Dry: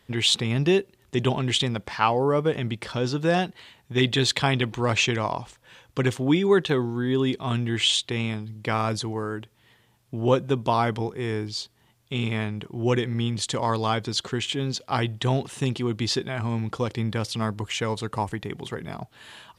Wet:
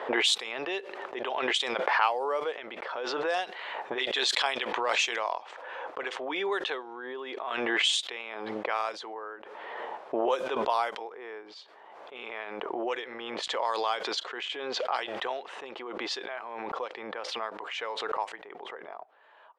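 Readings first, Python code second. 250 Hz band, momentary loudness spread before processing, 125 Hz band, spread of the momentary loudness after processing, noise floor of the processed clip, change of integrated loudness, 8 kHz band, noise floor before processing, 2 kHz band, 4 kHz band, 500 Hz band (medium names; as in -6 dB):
-14.5 dB, 11 LU, under -35 dB, 16 LU, -50 dBFS, -5.5 dB, -6.5 dB, -62 dBFS, -1.0 dB, -4.0 dB, -6.5 dB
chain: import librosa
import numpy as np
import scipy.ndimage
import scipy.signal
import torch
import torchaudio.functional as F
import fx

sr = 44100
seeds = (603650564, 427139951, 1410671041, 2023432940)

y = scipy.signal.sosfilt(scipy.signal.butter(4, 520.0, 'highpass', fs=sr, output='sos'), x)
y = fx.env_lowpass(y, sr, base_hz=850.0, full_db=-19.0)
y = fx.pre_swell(y, sr, db_per_s=26.0)
y = y * librosa.db_to_amplitude(-4.5)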